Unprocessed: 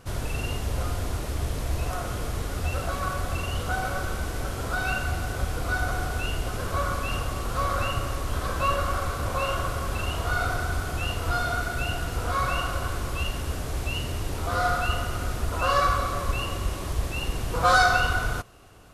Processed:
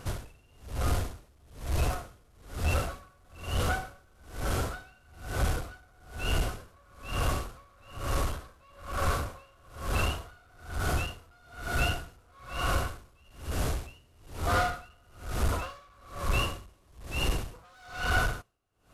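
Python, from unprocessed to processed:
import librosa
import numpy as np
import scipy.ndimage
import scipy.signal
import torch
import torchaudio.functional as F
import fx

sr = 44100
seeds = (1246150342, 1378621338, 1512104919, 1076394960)

y = 10.0 ** (-24.0 / 20.0) * np.tanh(x / 10.0 ** (-24.0 / 20.0))
y = y * 10.0 ** (-35 * (0.5 - 0.5 * np.cos(2.0 * np.pi * 1.1 * np.arange(len(y)) / sr)) / 20.0)
y = F.gain(torch.from_numpy(y), 4.5).numpy()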